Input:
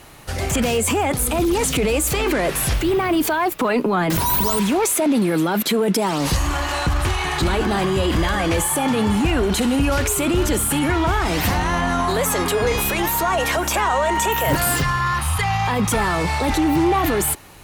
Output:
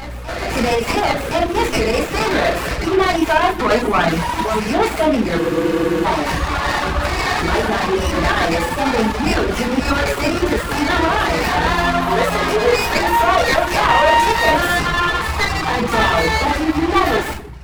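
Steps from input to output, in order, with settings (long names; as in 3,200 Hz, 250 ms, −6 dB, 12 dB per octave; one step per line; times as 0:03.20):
linear-phase brick-wall low-pass 14,000 Hz
low-shelf EQ 230 Hz −7.5 dB
mains hum 60 Hz, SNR 15 dB
drawn EQ curve 230 Hz 0 dB, 2,600 Hz +10 dB, 5,200 Hz −4 dB
on a send: backwards echo 1,067 ms −14 dB
on the sum: rectangular room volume 280 cubic metres, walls mixed, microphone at 1.6 metres
reverb reduction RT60 0.77 s
frozen spectrum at 0:05.42, 0.62 s
windowed peak hold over 9 samples
level −2.5 dB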